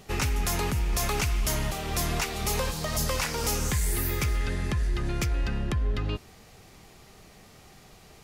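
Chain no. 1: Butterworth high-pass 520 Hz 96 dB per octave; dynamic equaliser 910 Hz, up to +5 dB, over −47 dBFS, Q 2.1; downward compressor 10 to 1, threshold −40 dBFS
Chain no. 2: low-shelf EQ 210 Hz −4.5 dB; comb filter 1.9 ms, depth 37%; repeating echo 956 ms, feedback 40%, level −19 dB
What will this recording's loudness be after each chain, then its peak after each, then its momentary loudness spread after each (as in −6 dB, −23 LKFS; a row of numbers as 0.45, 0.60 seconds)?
−42.5, −29.0 LKFS; −23.5, −16.5 dBFS; 12, 20 LU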